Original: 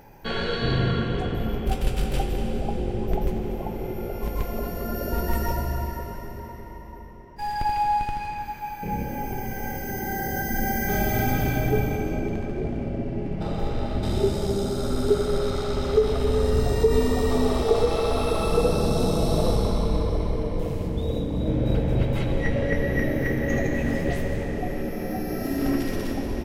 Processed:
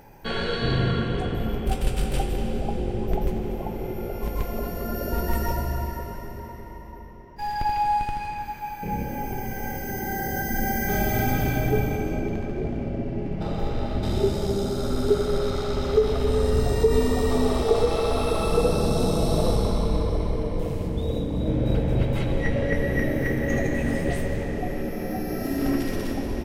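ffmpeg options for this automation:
ffmpeg -i in.wav -af "asetnsamples=nb_out_samples=441:pad=0,asendcmd='2.36 equalizer g 1.5;6.91 equalizer g -9.5;7.85 equalizer g 2.5;12.22 equalizer g -5;16.28 equalizer g 2.5;22.74 equalizer g 11;24.26 equalizer g 2',equalizer=frequency=8700:width_type=o:width=0.21:gain=7.5" out.wav

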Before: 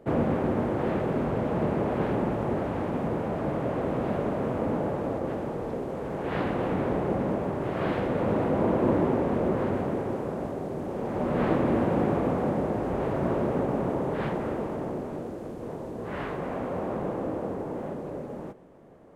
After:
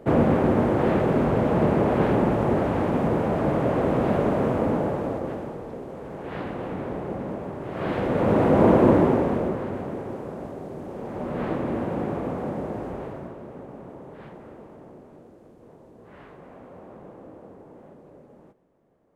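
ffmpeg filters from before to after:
ffmpeg -i in.wav -af "volume=18.5dB,afade=type=out:start_time=4.4:duration=1.24:silence=0.316228,afade=type=in:start_time=7.67:duration=1.02:silence=0.237137,afade=type=out:start_time=8.69:duration=0.92:silence=0.266073,afade=type=out:start_time=12.81:duration=0.53:silence=0.298538" out.wav

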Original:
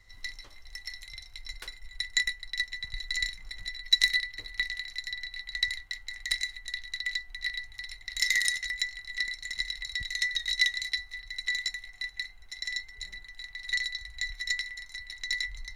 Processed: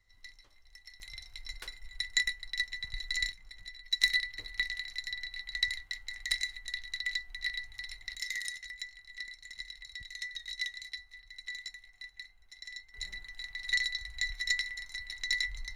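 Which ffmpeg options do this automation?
ffmpeg -i in.wav -af "asetnsamples=nb_out_samples=441:pad=0,asendcmd='1 volume volume -2dB;3.32 volume volume -9dB;4.03 volume volume -2dB;8.15 volume volume -11dB;12.94 volume volume 0dB',volume=-12.5dB" out.wav

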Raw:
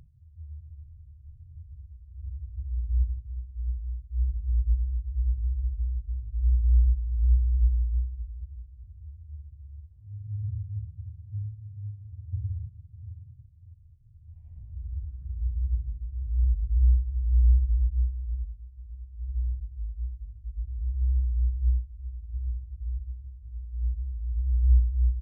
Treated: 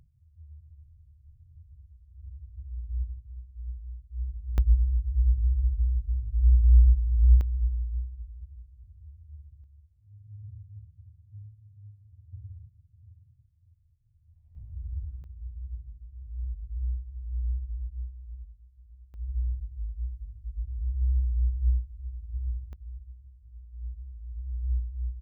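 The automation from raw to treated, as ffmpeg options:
ffmpeg -i in.wav -af "asetnsamples=nb_out_samples=441:pad=0,asendcmd='4.58 volume volume 3.5dB;7.41 volume volume -4.5dB;9.64 volume volume -11.5dB;14.55 volume volume -0.5dB;15.24 volume volume -10.5dB;19.14 volume volume -0.5dB;22.73 volume volume -9dB',volume=-6.5dB" out.wav

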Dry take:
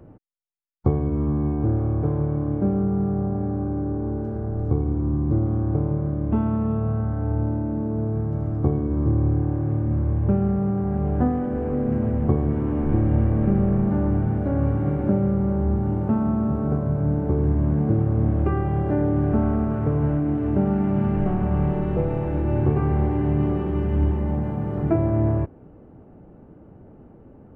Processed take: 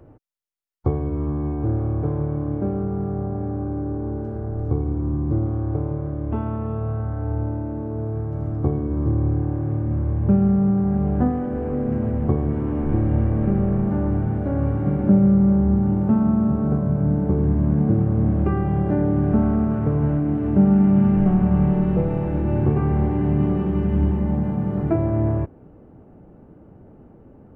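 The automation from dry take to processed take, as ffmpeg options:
ffmpeg -i in.wav -af "asetnsamples=nb_out_samples=441:pad=0,asendcmd='1.69 equalizer g -5;5.5 equalizer g -14.5;8.39 equalizer g -3;10.19 equalizer g 6;11.3 equalizer g -0.5;14.86 equalizer g 8.5;24.81 equalizer g 0.5',equalizer=frequency=190:width_type=o:width=0.39:gain=-12" out.wav

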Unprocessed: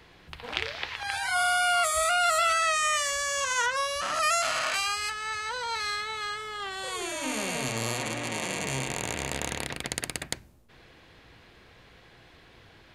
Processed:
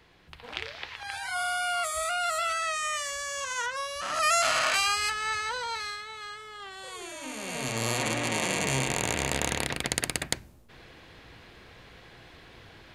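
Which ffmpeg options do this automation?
ffmpeg -i in.wav -af "volume=13.5dB,afade=type=in:start_time=3.95:duration=0.52:silence=0.398107,afade=type=out:start_time=5.3:duration=0.68:silence=0.316228,afade=type=in:start_time=7.39:duration=0.68:silence=0.298538" out.wav

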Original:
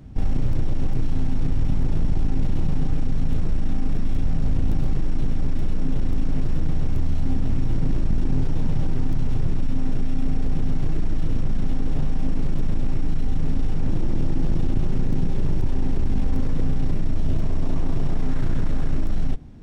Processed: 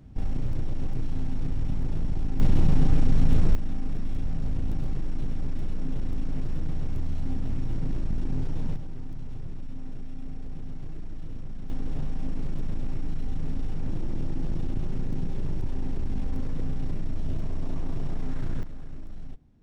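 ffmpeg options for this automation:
ffmpeg -i in.wav -af "asetnsamples=nb_out_samples=441:pad=0,asendcmd='2.4 volume volume 2dB;3.55 volume volume -7dB;8.76 volume volume -14.5dB;11.7 volume volume -7.5dB;18.63 volume volume -17dB',volume=-6.5dB" out.wav

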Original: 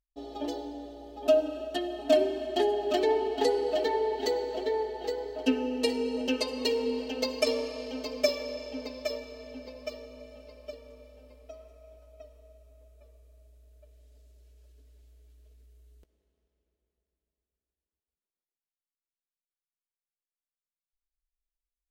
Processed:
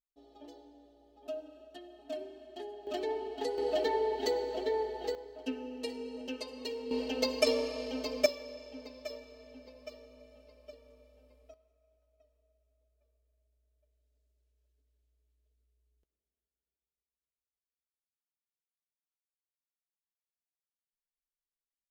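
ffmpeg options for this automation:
ffmpeg -i in.wav -af "asetnsamples=nb_out_samples=441:pad=0,asendcmd='2.87 volume volume -9.5dB;3.58 volume volume -2.5dB;5.15 volume volume -11dB;6.91 volume volume -0.5dB;8.26 volume volume -9dB;11.54 volume volume -19.5dB',volume=-17.5dB" out.wav

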